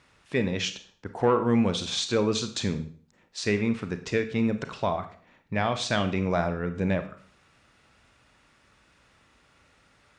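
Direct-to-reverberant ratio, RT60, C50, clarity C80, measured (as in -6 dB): 8.5 dB, 0.45 s, 12.0 dB, 15.5 dB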